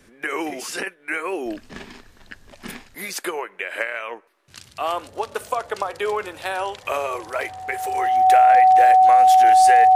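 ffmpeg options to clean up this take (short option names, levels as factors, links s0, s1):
-af "bandreject=f=750:w=30"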